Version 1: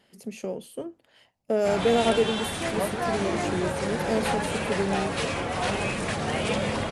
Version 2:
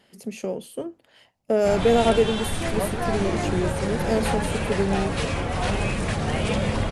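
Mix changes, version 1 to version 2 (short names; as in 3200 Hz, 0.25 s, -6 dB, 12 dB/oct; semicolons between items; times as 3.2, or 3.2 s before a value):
speech +3.5 dB; background: remove HPF 230 Hz 6 dB/oct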